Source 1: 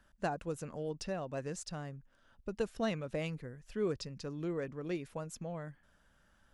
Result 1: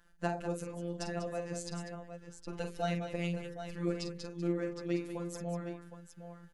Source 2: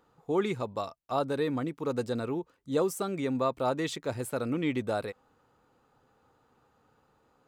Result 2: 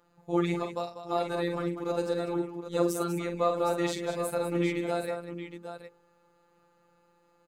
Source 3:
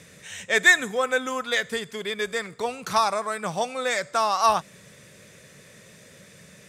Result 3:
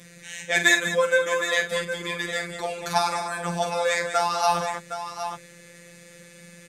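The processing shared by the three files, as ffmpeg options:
-af "bandreject=f=47.87:t=h:w=4,bandreject=f=95.74:t=h:w=4,bandreject=f=143.61:t=h:w=4,bandreject=f=191.48:t=h:w=4,bandreject=f=239.35:t=h:w=4,bandreject=f=287.22:t=h:w=4,bandreject=f=335.09:t=h:w=4,bandreject=f=382.96:t=h:w=4,bandreject=f=430.83:t=h:w=4,bandreject=f=478.7:t=h:w=4,afftfilt=real='hypot(re,im)*cos(PI*b)':imag='0':win_size=1024:overlap=0.75,aecho=1:1:46|195|764:0.398|0.316|0.316,volume=1.5"

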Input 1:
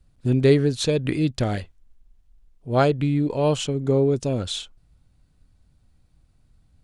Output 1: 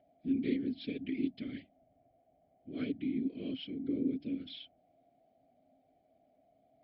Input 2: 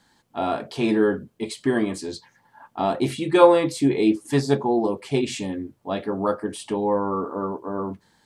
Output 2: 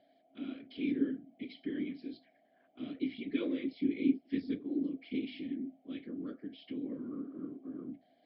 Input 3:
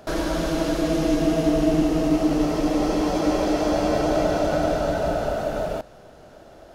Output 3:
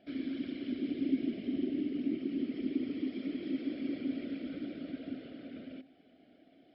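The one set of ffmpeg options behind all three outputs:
-filter_complex "[0:a]aeval=exprs='val(0)+0.0158*sin(2*PI*710*n/s)':c=same,bandreject=f=60:t=h:w=6,bandreject=f=120:t=h:w=6,bandreject=f=180:t=h:w=6,bandreject=f=240:t=h:w=6,asplit=2[s0][s1];[s1]acompressor=threshold=0.0282:ratio=6,volume=1[s2];[s0][s2]amix=inputs=2:normalize=0,afftfilt=real='hypot(re,im)*cos(2*PI*random(0))':imag='hypot(re,im)*sin(2*PI*random(1))':win_size=512:overlap=0.75,areverse,acompressor=mode=upward:threshold=0.0141:ratio=2.5,areverse,asplit=3[s3][s4][s5];[s3]bandpass=f=270:t=q:w=8,volume=1[s6];[s4]bandpass=f=2290:t=q:w=8,volume=0.501[s7];[s5]bandpass=f=3010:t=q:w=8,volume=0.355[s8];[s6][s7][s8]amix=inputs=3:normalize=0" -ar 12000 -c:a libmp3lame -b:a 64k

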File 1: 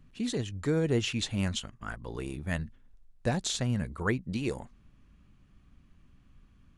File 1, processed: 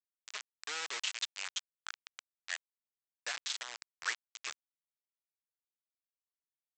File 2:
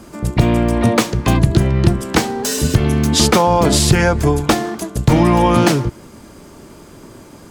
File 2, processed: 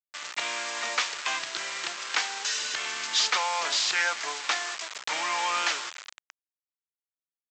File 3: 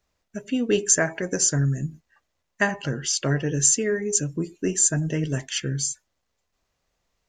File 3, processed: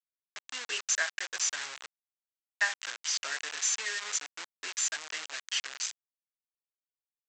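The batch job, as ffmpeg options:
-filter_complex "[0:a]asplit=2[s0][s1];[s1]asplit=4[s2][s3][s4][s5];[s2]adelay=207,afreqshift=110,volume=0.0708[s6];[s3]adelay=414,afreqshift=220,volume=0.0432[s7];[s4]adelay=621,afreqshift=330,volume=0.0263[s8];[s5]adelay=828,afreqshift=440,volume=0.016[s9];[s6][s7][s8][s9]amix=inputs=4:normalize=0[s10];[s0][s10]amix=inputs=2:normalize=0,agate=range=0.0224:threshold=0.00447:ratio=3:detection=peak,asplit=2[s11][s12];[s12]highpass=f=720:p=1,volume=5.01,asoftclip=type=tanh:threshold=0.944[s13];[s11][s13]amix=inputs=2:normalize=0,lowpass=f=3200:p=1,volume=0.501,adynamicsmooth=sensitivity=6.5:basefreq=2200,aresample=16000,acrusher=bits=3:mix=0:aa=0.000001,aresample=44100,highpass=1500,volume=0.376"

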